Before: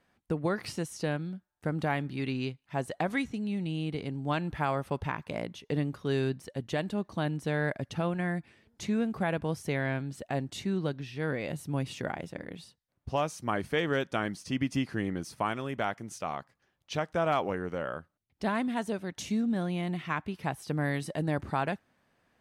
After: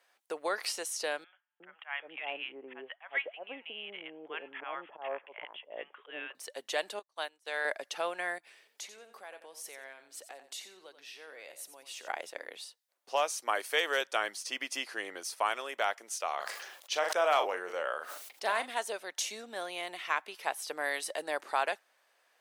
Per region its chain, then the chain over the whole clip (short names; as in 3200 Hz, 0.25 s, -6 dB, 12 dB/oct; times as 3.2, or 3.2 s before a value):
1.24–6.35 Chebyshev low-pass 3300 Hz, order 8 + auto swell 0.151 s + bands offset in time highs, lows 0.36 s, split 910 Hz
6.99–7.65 HPF 620 Hz 6 dB/oct + upward expander 2.5:1, over -53 dBFS
8.38–12.08 high shelf 10000 Hz +4.5 dB + compressor 3:1, threshold -47 dBFS + feedback echo 89 ms, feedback 22%, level -11 dB
13.55–14.01 HPF 250 Hz + high shelf 8400 Hz +8.5 dB
16.34–18.7 doubler 39 ms -11 dB + sustainer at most 45 dB/s
whole clip: HPF 480 Hz 24 dB/oct; high shelf 2800 Hz +8.5 dB